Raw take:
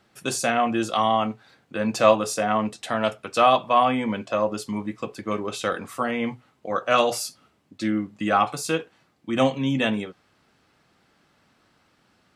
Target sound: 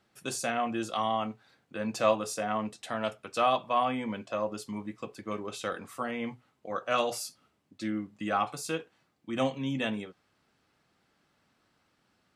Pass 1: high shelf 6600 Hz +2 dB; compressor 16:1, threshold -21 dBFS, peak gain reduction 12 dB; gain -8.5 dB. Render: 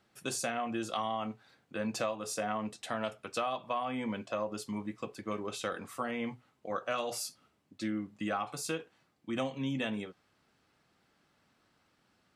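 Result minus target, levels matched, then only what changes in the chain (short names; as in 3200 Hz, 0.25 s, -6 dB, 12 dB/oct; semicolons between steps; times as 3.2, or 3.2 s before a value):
compressor: peak gain reduction +12 dB
remove: compressor 16:1, threshold -21 dBFS, peak gain reduction 12 dB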